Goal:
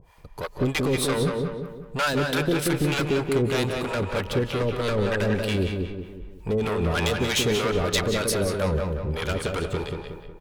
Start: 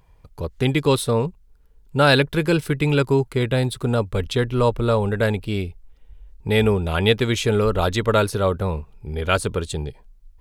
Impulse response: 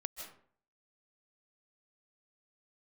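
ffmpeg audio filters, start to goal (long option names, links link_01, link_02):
-filter_complex "[0:a]lowshelf=frequency=240:gain=-8,acompressor=threshold=-21dB:ratio=6,asoftclip=type=tanh:threshold=-29dB,acrossover=split=600[link_01][link_02];[link_01]aeval=exprs='val(0)*(1-1/2+1/2*cos(2*PI*3.2*n/s))':channel_layout=same[link_03];[link_02]aeval=exprs='val(0)*(1-1/2-1/2*cos(2*PI*3.2*n/s))':channel_layout=same[link_04];[link_03][link_04]amix=inputs=2:normalize=0,asplit=2[link_05][link_06];[link_06]adelay=183,lowpass=frequency=2900:poles=1,volume=-4dB,asplit=2[link_07][link_08];[link_08]adelay=183,lowpass=frequency=2900:poles=1,volume=0.46,asplit=2[link_09][link_10];[link_10]adelay=183,lowpass=frequency=2900:poles=1,volume=0.46,asplit=2[link_11][link_12];[link_12]adelay=183,lowpass=frequency=2900:poles=1,volume=0.46,asplit=2[link_13][link_14];[link_14]adelay=183,lowpass=frequency=2900:poles=1,volume=0.46,asplit=2[link_15][link_16];[link_16]adelay=183,lowpass=frequency=2900:poles=1,volume=0.46[link_17];[link_05][link_07][link_09][link_11][link_13][link_15][link_17]amix=inputs=7:normalize=0,asplit=2[link_18][link_19];[1:a]atrim=start_sample=2205,asetrate=41454,aresample=44100[link_20];[link_19][link_20]afir=irnorm=-1:irlink=0,volume=0dB[link_21];[link_18][link_21]amix=inputs=2:normalize=0,volume=7dB"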